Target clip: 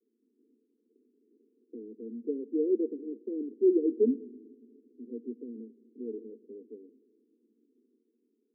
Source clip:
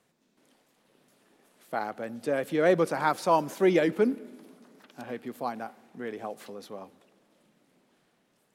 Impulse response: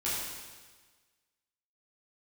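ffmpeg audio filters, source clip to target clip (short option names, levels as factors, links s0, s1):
-af "asuperpass=centerf=320:order=20:qfactor=1.3"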